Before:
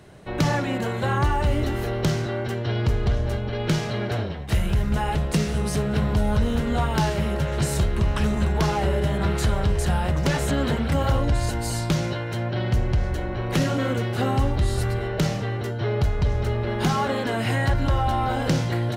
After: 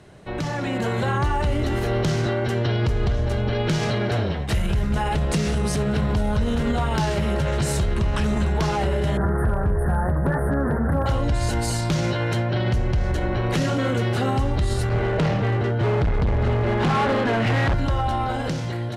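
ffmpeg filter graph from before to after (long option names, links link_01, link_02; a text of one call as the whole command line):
ffmpeg -i in.wav -filter_complex "[0:a]asettb=1/sr,asplit=3[link_01][link_02][link_03];[link_01]atrim=end=9.174[link_04];[link_02]atrim=start=9.17:end=11.06,asetpts=PTS-STARTPTS,afade=type=in:duration=0.004:curve=qsin,afade=type=out:start_time=1.886:duration=0.004:curve=qsin,acrossover=split=3700[link_05][link_06];[link_06]acompressor=threshold=-39dB:ratio=4:attack=1:release=60[link_07];[link_05][link_07]amix=inputs=2:normalize=0,asuperstop=centerf=4300:order=20:qfactor=0.59,asoftclip=type=hard:threshold=-14.5dB[link_08];[link_03]atrim=start=11.056[link_09];[link_04][link_08]acrossfade=duration=0.004:curve1=hsin:curve2=qsin[link_10];[link_10][link_09]acrossfade=duration=0.004:curve1=qsin:curve2=hsin,asettb=1/sr,asplit=3[link_11][link_12][link_13];[link_11]atrim=end=14.894[link_14];[link_12]atrim=start=14.89:end=17.74,asetpts=PTS-STARTPTS,afade=type=in:duration=0.004:curve=qsin,afade=type=out:start_time=2.846:duration=0.004:curve=qsin,lowpass=2700,asoftclip=type=hard:threshold=-24dB[link_15];[link_13]atrim=start=17.736[link_16];[link_14][link_15]acrossfade=duration=0.004:curve1=hsin:curve2=qsin[link_17];[link_17][link_16]acrossfade=duration=0.004:curve1=qsin:curve2=hsin,lowpass=11000,alimiter=limit=-21dB:level=0:latency=1:release=66,dynaudnorm=framelen=130:gausssize=11:maxgain=6.5dB" out.wav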